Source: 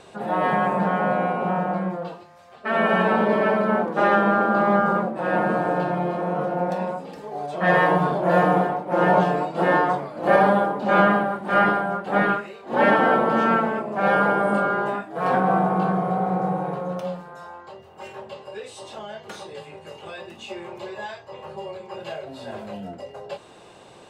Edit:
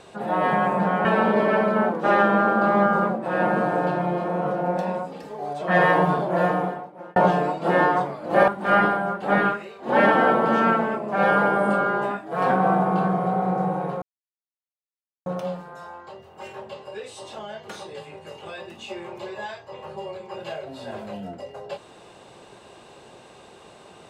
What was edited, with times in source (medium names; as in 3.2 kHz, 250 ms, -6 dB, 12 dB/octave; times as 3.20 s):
1.05–2.98 s: delete
8.04–9.09 s: fade out
10.41–11.32 s: delete
16.86 s: insert silence 1.24 s